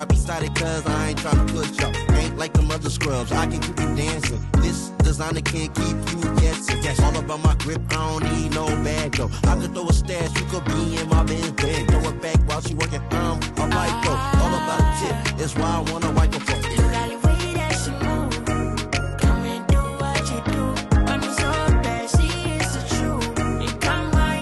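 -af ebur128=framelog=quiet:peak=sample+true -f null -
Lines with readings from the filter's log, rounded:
Integrated loudness:
  I:         -22.0 LUFS
  Threshold: -32.0 LUFS
Loudness range:
  LRA:         1.1 LU
  Threshold: -42.0 LUFS
  LRA low:   -22.6 LUFS
  LRA high:  -21.5 LUFS
Sample peak:
  Peak:       -7.3 dBFS
True peak:
  Peak:       -7.3 dBFS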